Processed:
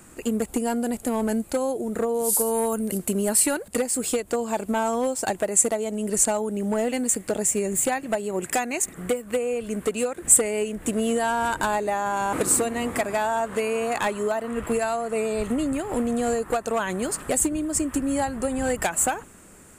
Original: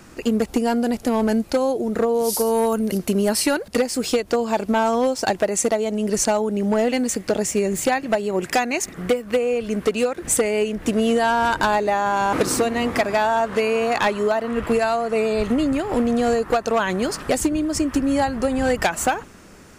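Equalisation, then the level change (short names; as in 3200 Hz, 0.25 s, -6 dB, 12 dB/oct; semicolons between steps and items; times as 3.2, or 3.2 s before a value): resonant high shelf 6600 Hz +6.5 dB, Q 3; -5.0 dB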